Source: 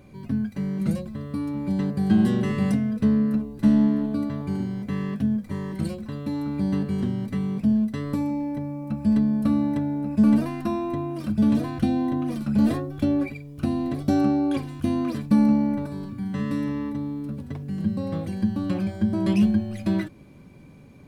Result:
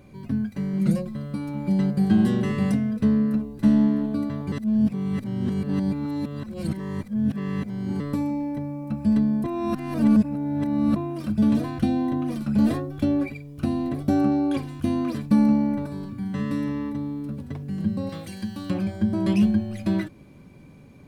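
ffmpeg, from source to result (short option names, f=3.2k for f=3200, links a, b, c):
-filter_complex "[0:a]asettb=1/sr,asplit=3[a][b][c];[a]atrim=end=0.734[d];[b]atrim=start=0.73:end=2.05,asetpts=PTS-STARTPTS,afade=t=in:d=0.004:c=qsin,afade=t=out:st=1.316:d=0.004:c=qsin,aecho=1:1:5.6:0.6,atrim=end_sample=58212[e];[c]atrim=start=2.046[f];[d][e]acrossfade=d=0.004:c1=hsin:c2=qsin[g];[g][f]acrossfade=d=0.004:c1=qsin:c2=hsin,asettb=1/sr,asplit=3[h][i][j];[h]atrim=end=13.894[k];[i]atrim=start=13.89:end=14.32,asetpts=PTS-STARTPTS,afade=t=in:d=0.004:c=qsin,afade=t=out:st=0.426:d=0.004:c=qsin,equalizer=f=4.9k:w=0.83:g=-5[l];[j]atrim=start=14.316[m];[k][l]acrossfade=d=0.004:c1=hsin:c2=qsin[n];[n][m]acrossfade=d=0.004:c1=qsin:c2=hsin,asettb=1/sr,asplit=3[o][p][q];[o]atrim=end=18.094[r];[p]atrim=start=18.09:end=18.7,asetpts=PTS-STARTPTS,afade=t=in:d=0.004:c=qsin,afade=t=out:st=0.606:d=0.004:c=qsin,tiltshelf=f=1.4k:g=-8[s];[q]atrim=start=18.696[t];[r][s]acrossfade=d=0.004:c1=hsin:c2=qsin[u];[u][t]acrossfade=d=0.004:c1=qsin:c2=hsin,asplit=5[v][w][x][y][z];[v]atrim=end=4.522[aa];[w]atrim=start=4.518:end=8.002,asetpts=PTS-STARTPTS,areverse[ab];[x]atrim=start=7.998:end=9.442[ac];[y]atrim=start=9.438:end=10.962,asetpts=PTS-STARTPTS,areverse[ad];[z]atrim=start=10.958[ae];[aa][ab]acrossfade=d=0.004:c1=hsin:c2=hsin[af];[af][ac]acrossfade=d=0.004:c1=hsin:c2=hsin[ag];[ag][ad]acrossfade=d=0.004:c1=hsin:c2=hsin[ah];[ah][ae]acrossfade=d=0.004:c1=hsin:c2=hsin"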